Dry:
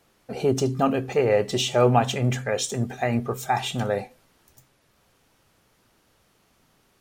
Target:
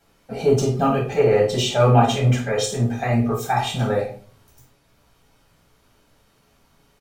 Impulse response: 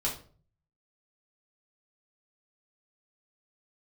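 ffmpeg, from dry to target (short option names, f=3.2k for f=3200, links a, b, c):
-filter_complex "[0:a]asplit=2[a][b];[b]adelay=50,volume=-12dB[c];[a][c]amix=inputs=2:normalize=0[d];[1:a]atrim=start_sample=2205[e];[d][e]afir=irnorm=-1:irlink=0,volume=-3dB"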